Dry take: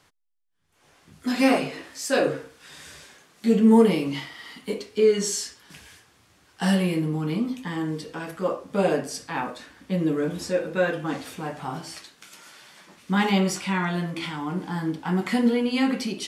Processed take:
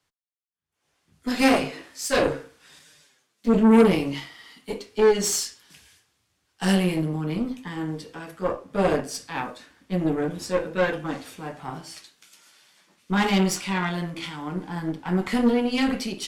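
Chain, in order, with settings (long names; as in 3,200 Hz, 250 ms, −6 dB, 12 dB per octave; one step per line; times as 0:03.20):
0:02.79–0:03.53: flanger swept by the level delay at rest 9.8 ms, full sweep at −22.5 dBFS
harmonic generator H 5 −25 dB, 8 −19 dB, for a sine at −5.5 dBFS
multiband upward and downward expander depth 40%
level −2.5 dB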